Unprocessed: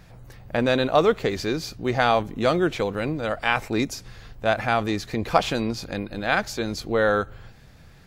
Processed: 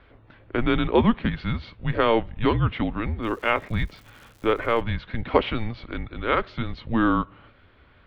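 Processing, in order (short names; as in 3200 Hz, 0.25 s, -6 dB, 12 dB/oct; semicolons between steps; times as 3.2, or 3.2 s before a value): mistuned SSB -230 Hz 150–3600 Hz; 3.22–4.8 crackle 320/s -42 dBFS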